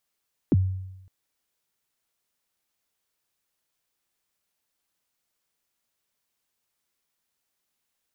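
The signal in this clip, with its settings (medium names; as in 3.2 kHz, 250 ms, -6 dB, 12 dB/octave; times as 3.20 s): kick drum length 0.56 s, from 380 Hz, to 94 Hz, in 31 ms, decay 0.93 s, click off, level -14 dB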